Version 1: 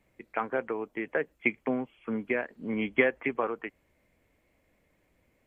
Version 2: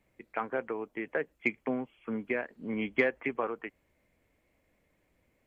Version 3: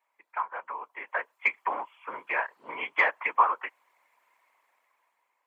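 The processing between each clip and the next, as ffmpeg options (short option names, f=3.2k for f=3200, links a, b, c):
-af "acontrast=36,volume=-8dB"
-af "dynaudnorm=f=260:g=9:m=12dB,afftfilt=real='hypot(re,im)*cos(2*PI*random(0))':imag='hypot(re,im)*sin(2*PI*random(1))':win_size=512:overlap=0.75,highpass=f=990:t=q:w=5.6"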